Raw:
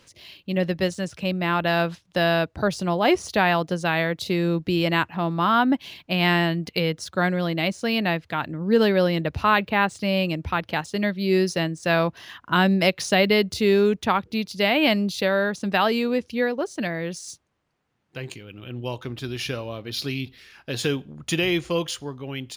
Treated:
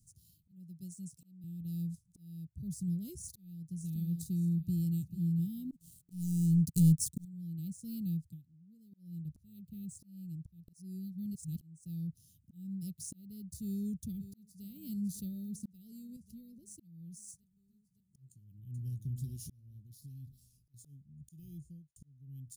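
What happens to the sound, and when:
0.51–1.44 s: high-pass 200 Hz
3.17–3.69 s: echo throw 590 ms, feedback 30%, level -8.5 dB
4.56–5.09 s: echo throw 440 ms, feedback 20%, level -11.5 dB
5.71–7.25 s: waveshaping leveller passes 3
8.21–9.13 s: dip -24 dB, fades 0.22 s
10.68–11.61 s: reverse
13.64–14.64 s: echo throw 560 ms, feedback 65%, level -15.5 dB
16.16–16.68 s: compression 2:1, threshold -31 dBFS
18.32–19.10 s: echo throw 420 ms, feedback 35%, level -5.5 dB
19.85–20.74 s: compression 5:1, threshold -35 dBFS
21.44–21.96 s: studio fade out
whole clip: elliptic band-stop 160–8000 Hz, stop band 80 dB; slow attack 772 ms; trim -2.5 dB

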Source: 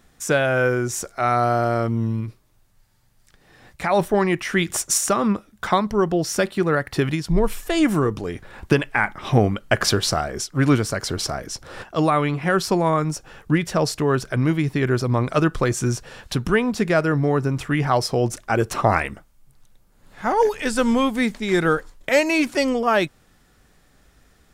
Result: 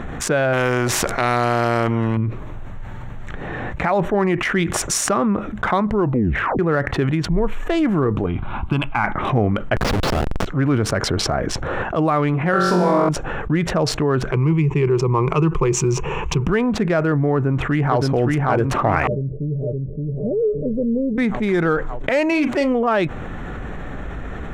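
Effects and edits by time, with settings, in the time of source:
0.53–2.17 s: spectrum-flattening compressor 2:1
5.99 s: tape stop 0.60 s
8.26–9.04 s: static phaser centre 1.8 kHz, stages 6
9.76–10.46 s: Schmitt trigger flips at -20.5 dBFS
12.51–13.09 s: flutter echo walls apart 3.8 m, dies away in 1.2 s
14.32–16.47 s: rippled EQ curve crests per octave 0.74, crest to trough 16 dB
17.34–18.02 s: echo throw 570 ms, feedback 55%, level -2.5 dB
19.07–21.18 s: rippled Chebyshev low-pass 610 Hz, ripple 9 dB
22.28–22.72 s: doubling 39 ms -11.5 dB
whole clip: local Wiener filter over 9 samples; low-pass 2.3 kHz 6 dB/octave; level flattener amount 70%; trim -4 dB

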